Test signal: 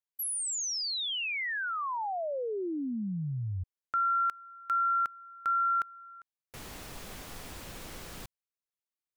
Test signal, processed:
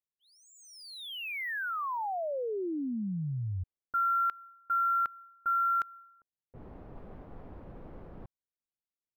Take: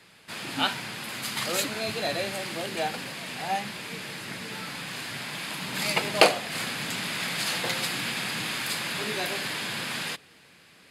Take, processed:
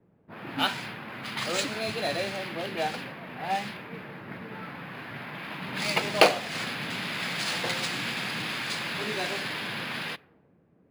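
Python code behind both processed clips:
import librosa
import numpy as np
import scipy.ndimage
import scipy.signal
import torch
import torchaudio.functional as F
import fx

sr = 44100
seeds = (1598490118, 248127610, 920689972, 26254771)

y = fx.env_lowpass(x, sr, base_hz=390.0, full_db=-25.0)
y = np.interp(np.arange(len(y)), np.arange(len(y))[::3], y[::3])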